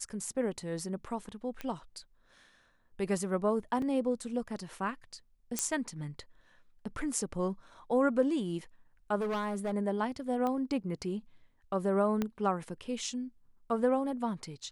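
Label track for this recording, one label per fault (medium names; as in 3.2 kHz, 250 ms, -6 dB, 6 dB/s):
1.610000	1.610000	pop -24 dBFS
3.820000	3.820000	dropout 2.7 ms
5.590000	5.590000	pop -13 dBFS
9.170000	9.730000	clipped -29.5 dBFS
10.470000	10.470000	pop -22 dBFS
12.220000	12.220000	pop -18 dBFS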